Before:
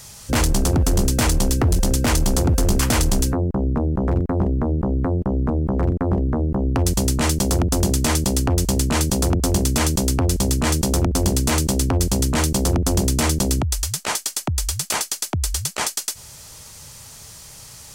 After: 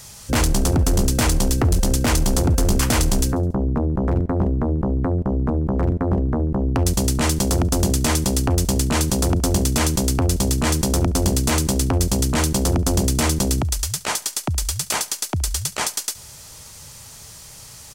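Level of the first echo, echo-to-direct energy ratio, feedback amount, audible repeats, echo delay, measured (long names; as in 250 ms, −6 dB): −21.5 dB, −20.0 dB, 51%, 3, 70 ms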